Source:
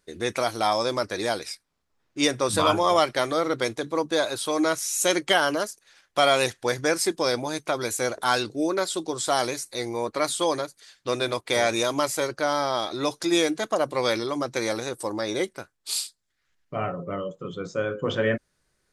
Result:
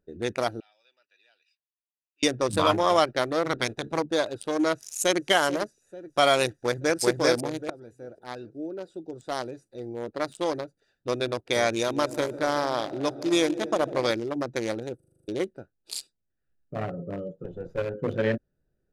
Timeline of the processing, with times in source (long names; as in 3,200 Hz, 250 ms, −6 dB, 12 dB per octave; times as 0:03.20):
0:00.60–0:02.23: four-pole ladder band-pass 3,000 Hz, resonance 65%
0:03.45–0:03.99: ceiling on every frequency bin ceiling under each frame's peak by 16 dB
0:04.73–0:05.26: delay throw 440 ms, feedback 60%, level −10 dB
0:06.50–0:07.01: delay throw 390 ms, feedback 40%, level −0.5 dB
0:07.70–0:11.15: fade in, from −14.5 dB
0:11.72–0:14.11: echo machine with several playback heads 75 ms, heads second and third, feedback 64%, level −12.5 dB
0:14.96: stutter in place 0.04 s, 8 plays
0:17.44–0:17.94: lower of the sound and its delayed copy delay 2 ms
whole clip: adaptive Wiener filter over 41 samples